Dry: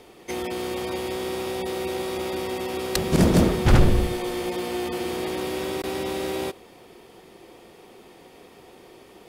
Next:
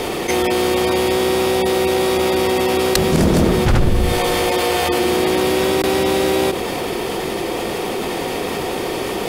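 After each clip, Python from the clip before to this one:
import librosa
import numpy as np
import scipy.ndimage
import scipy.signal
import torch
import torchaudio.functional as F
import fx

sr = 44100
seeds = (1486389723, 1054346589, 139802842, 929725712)

y = fx.hum_notches(x, sr, base_hz=60, count=6)
y = fx.env_flatten(y, sr, amount_pct=70)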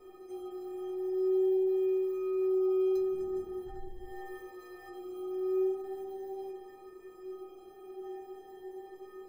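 y = fx.band_shelf(x, sr, hz=4900.0, db=-15.5, octaves=3.0)
y = fx.stiff_resonator(y, sr, f0_hz=370.0, decay_s=0.65, stiffness=0.03)
y = fx.notch_cascade(y, sr, direction='rising', hz=0.42)
y = y * librosa.db_to_amplitude(-6.5)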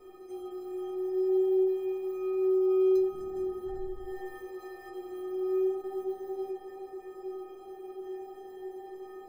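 y = fx.echo_banded(x, sr, ms=429, feedback_pct=81, hz=690.0, wet_db=-5.5)
y = y * librosa.db_to_amplitude(1.5)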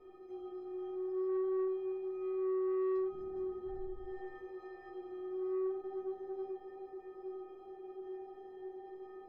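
y = 10.0 ** (-25.5 / 20.0) * np.tanh(x / 10.0 ** (-25.5 / 20.0))
y = fx.air_absorb(y, sr, metres=250.0)
y = y * librosa.db_to_amplitude(-4.5)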